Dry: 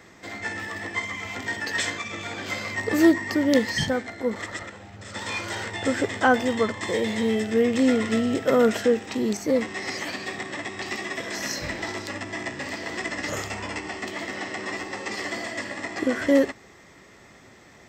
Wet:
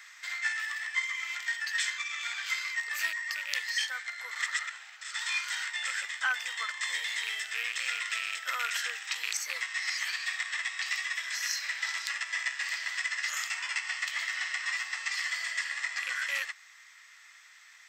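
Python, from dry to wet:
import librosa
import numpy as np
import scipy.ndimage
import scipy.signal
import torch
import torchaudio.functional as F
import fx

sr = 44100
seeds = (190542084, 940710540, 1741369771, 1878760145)

y = fx.rattle_buzz(x, sr, strikes_db=-26.0, level_db=-21.0)
y = scipy.signal.sosfilt(scipy.signal.butter(4, 1400.0, 'highpass', fs=sr, output='sos'), y)
y = fx.rider(y, sr, range_db=4, speed_s=0.5)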